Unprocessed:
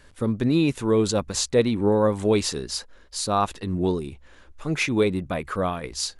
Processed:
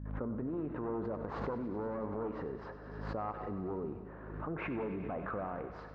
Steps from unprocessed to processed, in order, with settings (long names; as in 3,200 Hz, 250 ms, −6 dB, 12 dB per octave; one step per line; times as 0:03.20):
wavefolder on the positive side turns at −18 dBFS
low-pass filter 1,200 Hz 24 dB per octave
noise gate with hold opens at −45 dBFS
high-pass filter 350 Hz 6 dB per octave
transient designer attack −5 dB, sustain +7 dB
in parallel at −1.5 dB: brickwall limiter −23.5 dBFS, peak gain reduction 8 dB
on the sum: downward compressor 5 to 1, threshold −32 dBFS, peak gain reduction 12.5 dB
mains hum 50 Hz, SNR 13 dB
feedback echo with a high-pass in the loop 100 ms, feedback 83%, high-pass 930 Hz, level −10 dB
convolution reverb RT60 2.5 s, pre-delay 18 ms, DRR 9.5 dB
wrong playback speed 24 fps film run at 25 fps
background raised ahead of every attack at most 40 dB per second
level −5 dB